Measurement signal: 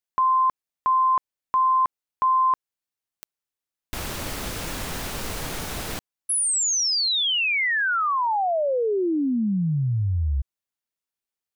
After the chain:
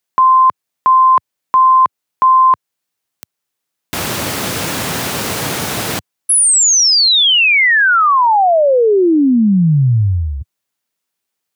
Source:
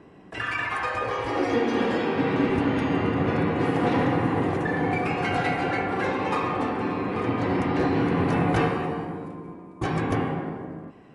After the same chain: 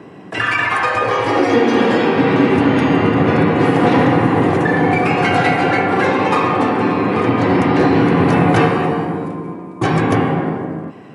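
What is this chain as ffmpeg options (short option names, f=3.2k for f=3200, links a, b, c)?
-filter_complex "[0:a]highpass=f=96:w=0.5412,highpass=f=96:w=1.3066,asplit=2[a][b];[b]alimiter=limit=-20.5dB:level=0:latency=1:release=304,volume=-2dB[c];[a][c]amix=inputs=2:normalize=0,volume=7.5dB"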